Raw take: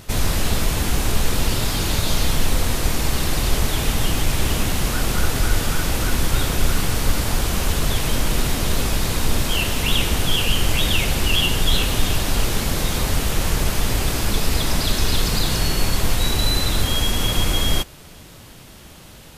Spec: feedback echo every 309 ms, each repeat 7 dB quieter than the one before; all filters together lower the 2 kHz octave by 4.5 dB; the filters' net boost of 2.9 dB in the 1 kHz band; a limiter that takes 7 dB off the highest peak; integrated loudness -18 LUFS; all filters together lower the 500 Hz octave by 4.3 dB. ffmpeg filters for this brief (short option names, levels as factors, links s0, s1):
-af "equalizer=f=500:t=o:g=-7.5,equalizer=f=1000:t=o:g=8,equalizer=f=2000:t=o:g=-8.5,alimiter=limit=0.251:level=0:latency=1,aecho=1:1:309|618|927|1236|1545:0.447|0.201|0.0905|0.0407|0.0183,volume=1.78"